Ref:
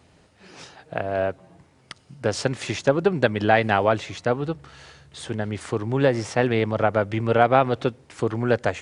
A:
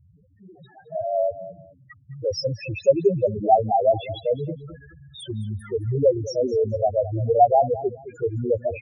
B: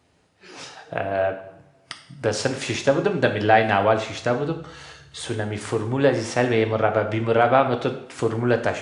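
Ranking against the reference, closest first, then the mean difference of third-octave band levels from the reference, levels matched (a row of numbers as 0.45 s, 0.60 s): B, A; 3.5 dB, 15.0 dB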